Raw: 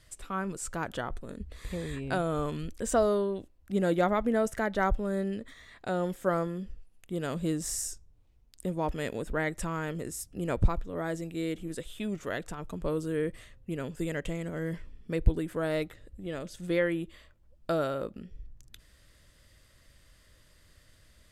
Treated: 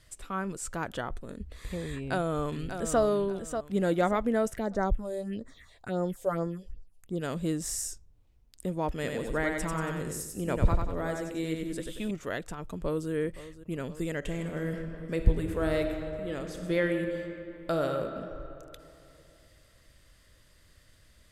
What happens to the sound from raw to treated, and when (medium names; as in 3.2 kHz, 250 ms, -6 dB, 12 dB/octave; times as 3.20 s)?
1.93–3.01 s: echo throw 590 ms, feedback 30%, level -8 dB
4.56–7.20 s: phase shifter stages 4, 1.1 Hz -> 3.5 Hz, lowest notch 210–3100 Hz
8.91–12.11 s: feedback delay 93 ms, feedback 44%, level -4 dB
12.61–13.11 s: echo throw 520 ms, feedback 80%, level -15.5 dB
14.18–17.94 s: reverb throw, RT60 2.9 s, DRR 4.5 dB